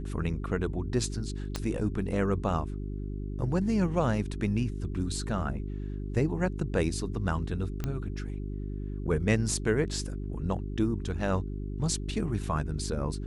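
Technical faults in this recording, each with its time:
hum 50 Hz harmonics 8 -35 dBFS
1.56 s: pop -17 dBFS
7.84 s: pop -18 dBFS

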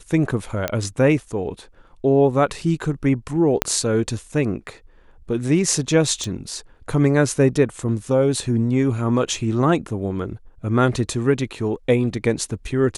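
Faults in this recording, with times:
0.68 s: pop -7 dBFS
3.62 s: pop -1 dBFS
6.24 s: pop

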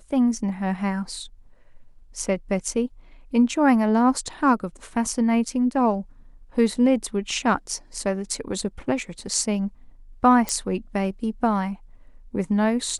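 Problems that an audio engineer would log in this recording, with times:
10.49 s: pop -10 dBFS

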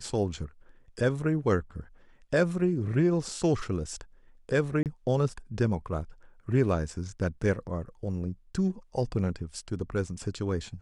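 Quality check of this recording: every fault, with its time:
4.83–4.86 s: dropout 28 ms

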